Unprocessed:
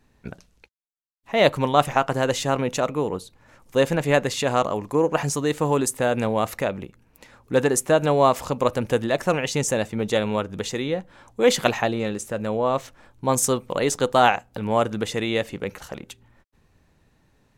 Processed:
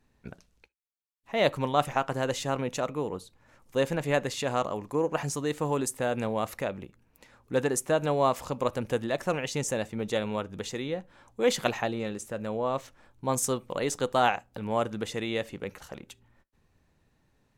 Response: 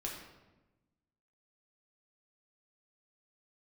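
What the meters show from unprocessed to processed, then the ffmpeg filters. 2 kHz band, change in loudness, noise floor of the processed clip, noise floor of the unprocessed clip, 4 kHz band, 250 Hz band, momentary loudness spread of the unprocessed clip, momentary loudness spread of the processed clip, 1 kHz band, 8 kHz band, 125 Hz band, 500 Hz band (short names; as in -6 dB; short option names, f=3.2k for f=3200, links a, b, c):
-7.0 dB, -7.0 dB, -70 dBFS, -63 dBFS, -7.0 dB, -7.0 dB, 10 LU, 10 LU, -7.0 dB, -7.0 dB, -7.0 dB, -7.0 dB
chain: -filter_complex "[0:a]asplit=2[a][b];[1:a]atrim=start_sample=2205,atrim=end_sample=3528[c];[b][c]afir=irnorm=-1:irlink=0,volume=-20.5dB[d];[a][d]amix=inputs=2:normalize=0,volume=-7.5dB"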